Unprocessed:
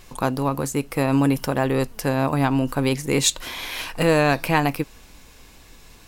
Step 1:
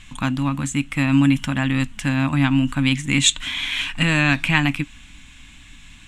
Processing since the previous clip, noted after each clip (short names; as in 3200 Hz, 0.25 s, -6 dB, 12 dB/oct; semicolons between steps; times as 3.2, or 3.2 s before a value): EQ curve 290 Hz 0 dB, 410 Hz -27 dB, 580 Hz -15 dB, 2000 Hz +3 dB, 3400 Hz +6 dB, 4800 Hz -11 dB, 7600 Hz +1 dB, 15000 Hz -26 dB; gain +3.5 dB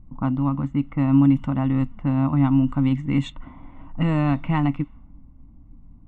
polynomial smoothing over 65 samples; low-pass opened by the level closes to 440 Hz, open at -15.5 dBFS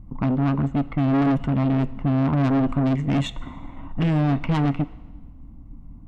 tube stage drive 25 dB, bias 0.5; on a send at -18 dB: reverb RT60 1.4 s, pre-delay 16 ms; on the sum: gain +7.5 dB